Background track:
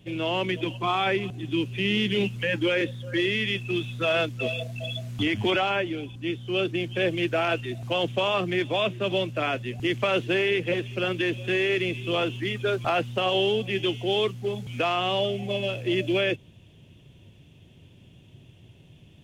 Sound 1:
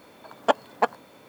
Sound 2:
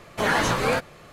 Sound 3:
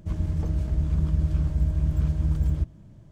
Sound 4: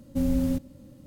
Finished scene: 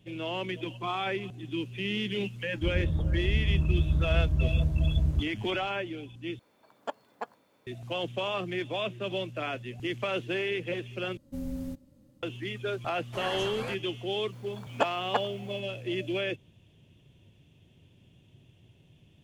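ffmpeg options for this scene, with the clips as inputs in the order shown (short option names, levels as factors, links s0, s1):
-filter_complex "[1:a]asplit=2[s0][s1];[0:a]volume=0.447[s2];[3:a]lowpass=1300[s3];[s2]asplit=3[s4][s5][s6];[s4]atrim=end=6.394[s7];[s0]atrim=end=1.28,asetpts=PTS-STARTPTS,volume=0.168[s8];[s5]atrim=start=7.666:end=11.174[s9];[4:a]atrim=end=1.06,asetpts=PTS-STARTPTS,volume=0.282[s10];[s6]atrim=start=12.226[s11];[s3]atrim=end=3.11,asetpts=PTS-STARTPTS,volume=0.794,afade=t=in:d=0.004:c=hsin,afade=t=out:st=3.106:d=0.004:c=hsin,adelay=2560[s12];[2:a]atrim=end=1.12,asetpts=PTS-STARTPTS,volume=0.168,afade=t=in:d=0.004:c=hsin,afade=t=out:st=1.116:d=0.004:c=hsin,adelay=12950[s13];[s1]atrim=end=1.28,asetpts=PTS-STARTPTS,volume=0.473,afade=t=in:d=0.004:c=hsin,afade=t=out:st=1.276:d=0.004:c=hsin,adelay=14320[s14];[s7][s8]acrossfade=d=0.004:c1=hsin:c2=hsin[s15];[s15][s9]acrossfade=d=0.004:c1=hsin:c2=hsin[s16];[s16][s10]acrossfade=d=0.004:c1=hsin:c2=hsin[s17];[s17][s11]acrossfade=d=0.004:c1=hsin:c2=hsin[s18];[s18][s12][s13][s14]amix=inputs=4:normalize=0"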